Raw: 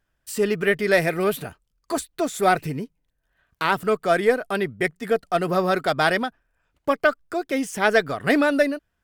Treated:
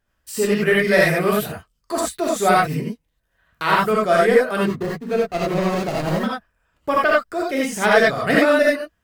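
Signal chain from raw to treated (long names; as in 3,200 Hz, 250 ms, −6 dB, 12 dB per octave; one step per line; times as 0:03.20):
0:04.57–0:06.23: running median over 41 samples
reverb whose tail is shaped and stops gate 110 ms rising, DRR −4.5 dB
level −1 dB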